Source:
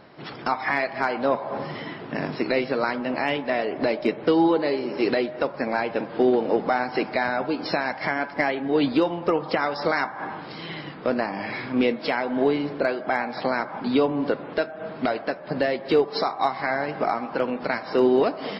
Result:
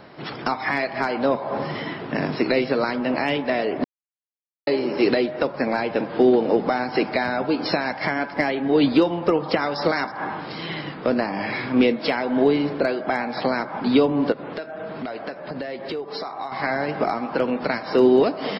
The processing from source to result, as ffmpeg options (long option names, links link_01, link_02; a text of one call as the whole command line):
ffmpeg -i in.wav -filter_complex "[0:a]asplit=2[link_01][link_02];[link_02]afade=type=in:start_time=9.35:duration=0.01,afade=type=out:start_time=9.79:duration=0.01,aecho=0:1:320|640:0.149624|0.0374059[link_03];[link_01][link_03]amix=inputs=2:normalize=0,asettb=1/sr,asplit=3[link_04][link_05][link_06];[link_04]atrim=end=14.324[link_07];[link_05]atrim=start=14.32:end=16.52,asetpts=PTS-STARTPTS,afade=type=in:duration=0.004:curve=qsin,afade=type=out:start_time=2.196:duration=0.004:curve=qsin,acompressor=threshold=-33dB:ratio=4:attack=3.2:release=140:knee=1:detection=peak[link_08];[link_06]atrim=start=16.516[link_09];[link_07][link_08]acrossfade=duration=0.004:curve1=hsin:curve2=qsin[link_10];[link_10][link_09]acrossfade=duration=0.004:curve1=qsin:curve2=hsin,asplit=3[link_11][link_12][link_13];[link_11]atrim=end=3.84,asetpts=PTS-STARTPTS,afade=type=out:start_time=3.836:duration=0.004:curve=hsin[link_14];[link_12]atrim=start=3.84:end=4.67,asetpts=PTS-STARTPTS,volume=0[link_15];[link_13]atrim=start=4.67,asetpts=PTS-STARTPTS,afade=type=in:duration=0.004:curve=hsin[link_16];[link_14][link_15][link_16]concat=n=3:v=0:a=1,acrossover=split=460|3000[link_17][link_18][link_19];[link_18]acompressor=threshold=-29dB:ratio=2.5[link_20];[link_17][link_20][link_19]amix=inputs=3:normalize=0,volume=4.5dB" out.wav